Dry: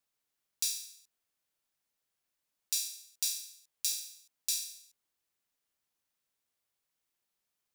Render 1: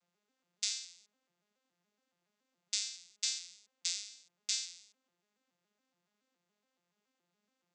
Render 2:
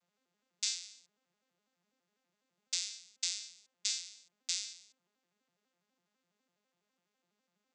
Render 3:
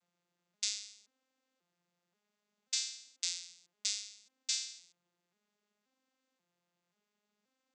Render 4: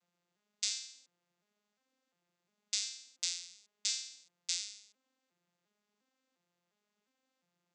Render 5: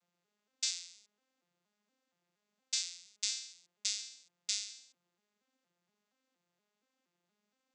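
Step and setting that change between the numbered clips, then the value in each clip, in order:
arpeggiated vocoder, a note every: 141, 83, 532, 353, 235 ms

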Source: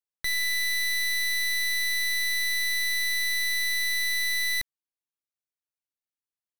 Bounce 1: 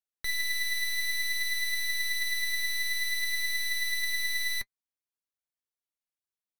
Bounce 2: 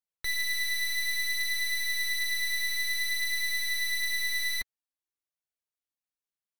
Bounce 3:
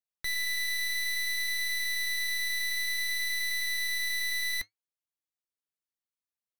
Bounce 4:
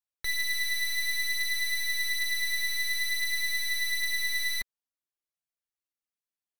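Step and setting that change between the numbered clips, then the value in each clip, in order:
flange, regen: +55, -19, -77, +6%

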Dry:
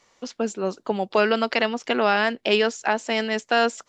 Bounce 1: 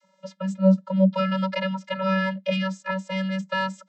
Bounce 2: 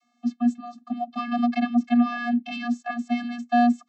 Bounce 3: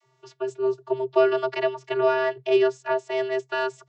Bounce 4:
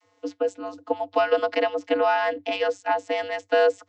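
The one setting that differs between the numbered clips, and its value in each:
vocoder, frequency: 190, 240, 130, 97 Hz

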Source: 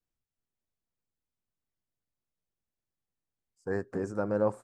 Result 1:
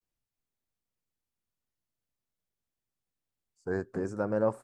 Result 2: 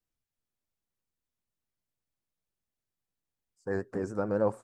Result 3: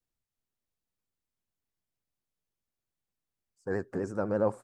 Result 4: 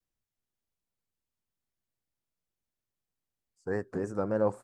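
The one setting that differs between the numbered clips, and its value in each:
vibrato, rate: 0.48, 7.1, 12, 3.5 Hz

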